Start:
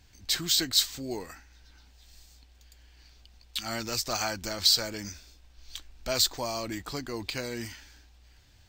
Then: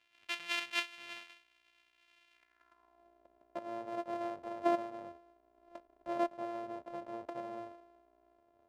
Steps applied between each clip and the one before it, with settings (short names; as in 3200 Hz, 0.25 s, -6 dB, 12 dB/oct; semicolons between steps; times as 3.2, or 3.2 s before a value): sample sorter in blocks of 128 samples; band-pass sweep 2700 Hz -> 600 Hz, 2.32–3.09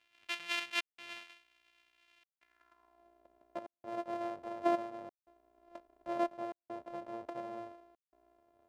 step gate "xxxxxxxxx..xxxxx" 168 bpm -60 dB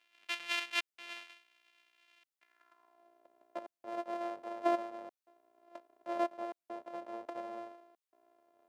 Bessel high-pass 320 Hz, order 2; gain +1 dB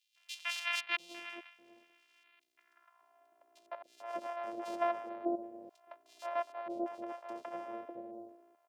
three bands offset in time highs, mids, lows 0.16/0.6 s, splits 590/3500 Hz; gain +2 dB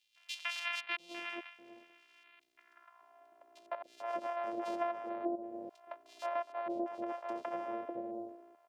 high shelf 5300 Hz -8.5 dB; compressor 3:1, threshold -41 dBFS, peak gain reduction 10 dB; gain +6 dB